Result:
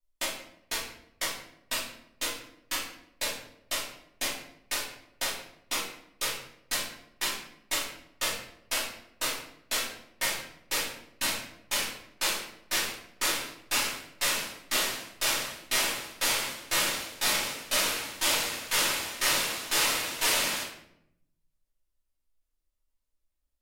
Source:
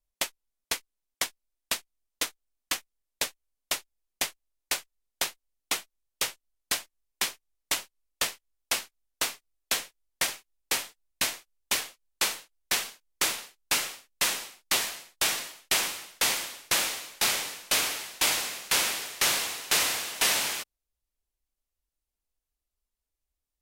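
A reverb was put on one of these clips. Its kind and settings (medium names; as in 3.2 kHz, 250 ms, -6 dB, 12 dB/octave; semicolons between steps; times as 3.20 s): simulated room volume 170 m³, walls mixed, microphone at 2.7 m; trim -9 dB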